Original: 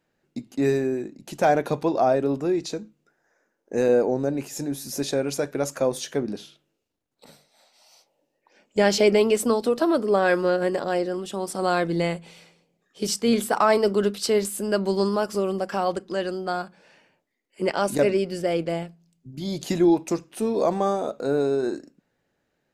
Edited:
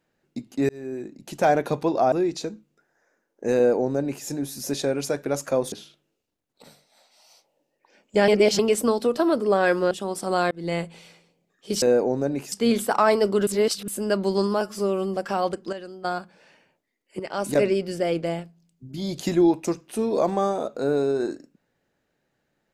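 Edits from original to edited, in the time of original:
0.69–1.16 s: fade in
2.12–2.41 s: delete
3.84–4.54 s: copy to 13.14 s
6.01–6.34 s: delete
8.90–9.21 s: reverse
10.53–11.23 s: delete
11.83–12.11 s: fade in
14.09–14.50 s: reverse
15.23–15.60 s: stretch 1.5×
16.16–16.48 s: gain -10 dB
17.63–18.00 s: fade in, from -13.5 dB

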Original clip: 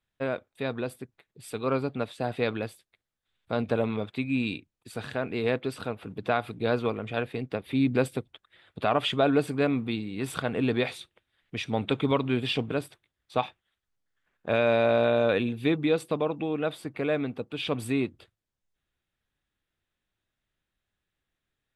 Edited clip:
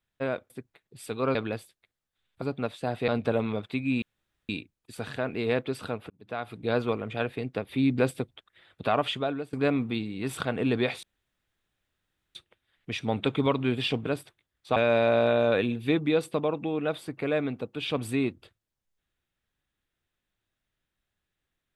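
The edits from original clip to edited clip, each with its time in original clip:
0.50–0.94 s: delete
1.79–2.45 s: move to 3.52 s
4.46 s: insert room tone 0.47 s
6.07–6.74 s: fade in
8.90–9.50 s: fade out, to -22.5 dB
11.00 s: insert room tone 1.32 s
13.41–14.53 s: delete

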